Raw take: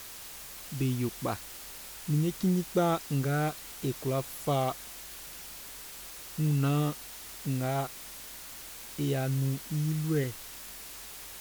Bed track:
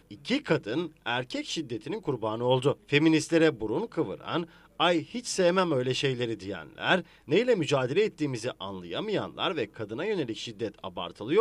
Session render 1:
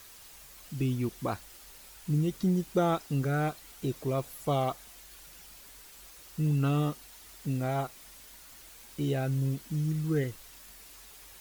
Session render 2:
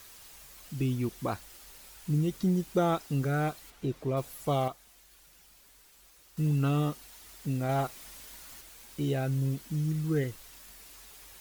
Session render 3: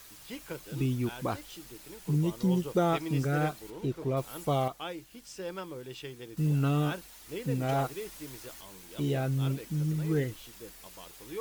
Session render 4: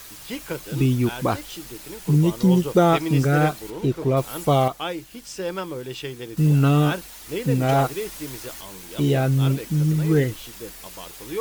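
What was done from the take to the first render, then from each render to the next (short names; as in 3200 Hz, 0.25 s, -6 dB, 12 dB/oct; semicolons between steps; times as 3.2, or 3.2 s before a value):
denoiser 8 dB, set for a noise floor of -45 dBFS
3.7–4.17 high shelf 4900 Hz -12 dB; 4.68–6.37 gain -7.5 dB; 7.69–8.61 sample leveller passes 1
add bed track -15 dB
gain +10 dB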